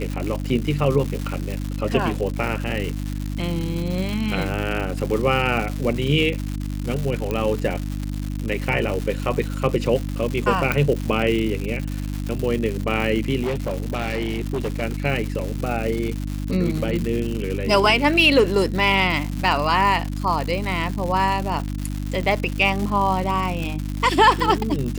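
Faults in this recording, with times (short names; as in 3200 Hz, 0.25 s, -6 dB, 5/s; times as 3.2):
crackle 230/s -25 dBFS
hum 50 Hz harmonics 6 -27 dBFS
7.31 pop -13 dBFS
10.72 pop -7 dBFS
13.42–14.83 clipped -20 dBFS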